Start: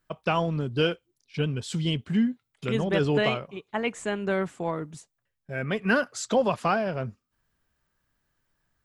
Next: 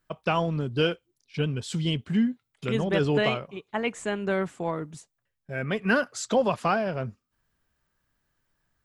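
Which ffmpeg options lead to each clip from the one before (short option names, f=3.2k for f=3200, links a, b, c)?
-af anull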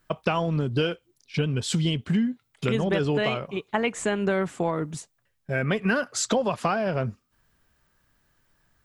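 -af "acompressor=threshold=-29dB:ratio=6,volume=8dB"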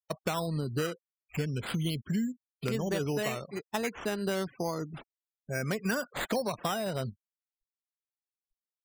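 -af "acrusher=samples=8:mix=1:aa=0.000001:lfo=1:lforange=4.8:lforate=0.32,afftfilt=real='re*gte(hypot(re,im),0.0126)':imag='im*gte(hypot(re,im),0.0126)':win_size=1024:overlap=0.75,volume=-7dB"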